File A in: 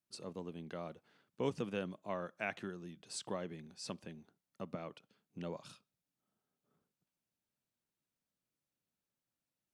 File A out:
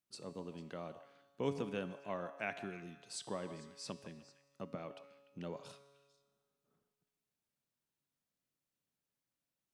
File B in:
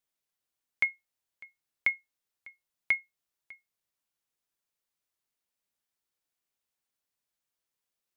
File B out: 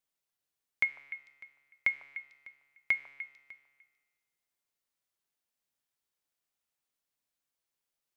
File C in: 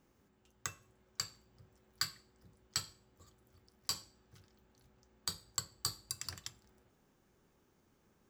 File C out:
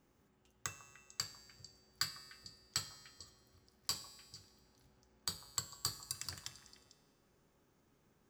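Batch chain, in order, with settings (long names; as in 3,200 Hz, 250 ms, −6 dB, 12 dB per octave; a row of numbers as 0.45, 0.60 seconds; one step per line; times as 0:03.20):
tuned comb filter 140 Hz, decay 1.6 s, mix 70%
echo through a band-pass that steps 149 ms, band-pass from 800 Hz, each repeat 1.4 octaves, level −10 dB
level +8.5 dB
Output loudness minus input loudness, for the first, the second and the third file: −1.0, −3.5, −1.5 LU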